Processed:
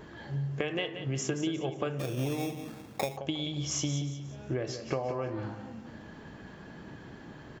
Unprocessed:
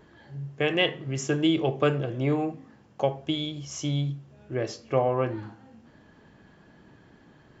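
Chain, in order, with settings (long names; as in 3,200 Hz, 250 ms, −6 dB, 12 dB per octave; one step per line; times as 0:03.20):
downward compressor 16 to 1, threshold −36 dBFS, peak gain reduction 19 dB
repeating echo 179 ms, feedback 37%, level −10 dB
0:01.99–0:03.17: sample-rate reduction 3,000 Hz, jitter 0%
level +7 dB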